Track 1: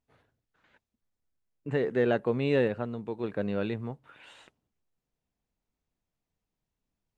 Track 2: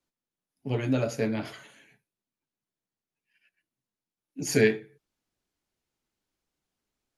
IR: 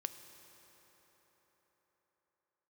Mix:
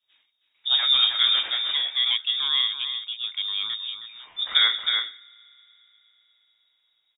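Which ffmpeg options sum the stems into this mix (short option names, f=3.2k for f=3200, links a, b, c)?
-filter_complex "[0:a]volume=1.5dB,asplit=2[a][b];[b]volume=-9.5dB[c];[1:a]adynamicequalizer=threshold=0.00631:dfrequency=2500:dqfactor=0.79:tfrequency=2500:tqfactor=0.79:attack=5:release=100:ratio=0.375:range=2:mode=boostabove:tftype=bell,acompressor=threshold=-21dB:ratio=6,lowshelf=f=76:g=12,volume=3dB,asplit=3[d][e][f];[e]volume=-9.5dB[g];[f]volume=-3dB[h];[2:a]atrim=start_sample=2205[i];[g][i]afir=irnorm=-1:irlink=0[j];[c][h]amix=inputs=2:normalize=0,aecho=0:1:317:1[k];[a][d][j][k]amix=inputs=4:normalize=0,lowpass=f=3.2k:t=q:w=0.5098,lowpass=f=3.2k:t=q:w=0.6013,lowpass=f=3.2k:t=q:w=0.9,lowpass=f=3.2k:t=q:w=2.563,afreqshift=-3800"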